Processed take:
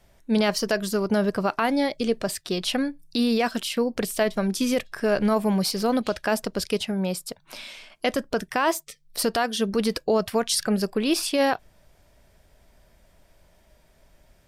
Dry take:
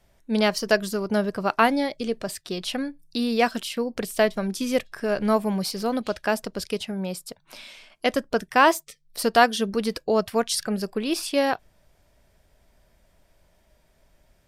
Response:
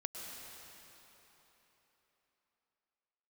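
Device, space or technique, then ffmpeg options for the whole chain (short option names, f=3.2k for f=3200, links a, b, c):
stacked limiters: -af "alimiter=limit=-10.5dB:level=0:latency=1:release=367,alimiter=limit=-16.5dB:level=0:latency=1:release=21,volume=3.5dB"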